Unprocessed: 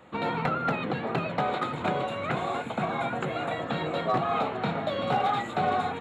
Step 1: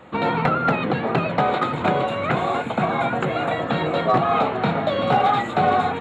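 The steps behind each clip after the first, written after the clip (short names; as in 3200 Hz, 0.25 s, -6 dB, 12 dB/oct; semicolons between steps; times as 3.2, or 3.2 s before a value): high shelf 5500 Hz -7 dB; gain +8 dB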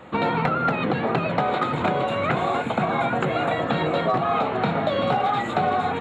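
compressor, threshold -20 dBFS, peak gain reduction 7 dB; gain +1.5 dB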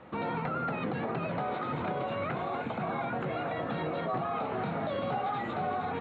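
limiter -17.5 dBFS, peak gain reduction 7.5 dB; air absorption 200 m; gain -6.5 dB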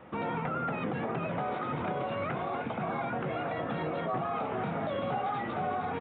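downsampling 8000 Hz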